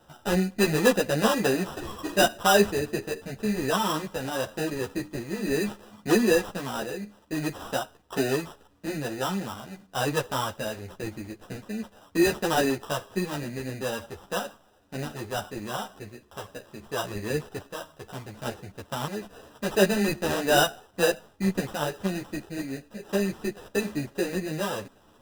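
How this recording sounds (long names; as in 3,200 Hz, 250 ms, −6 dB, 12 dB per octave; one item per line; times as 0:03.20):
aliases and images of a low sample rate 2,200 Hz, jitter 0%
a shimmering, thickened sound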